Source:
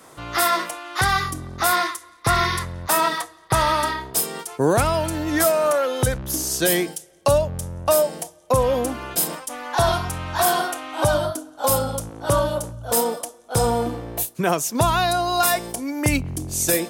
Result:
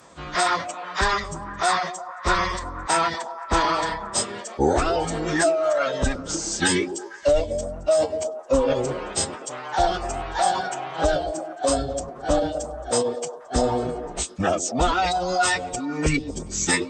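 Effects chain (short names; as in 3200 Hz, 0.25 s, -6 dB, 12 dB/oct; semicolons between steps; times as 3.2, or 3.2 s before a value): reverb removal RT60 0.6 s; formant-preserving pitch shift -11.5 st; delay with a stepping band-pass 0.121 s, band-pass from 320 Hz, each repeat 0.7 oct, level -6.5 dB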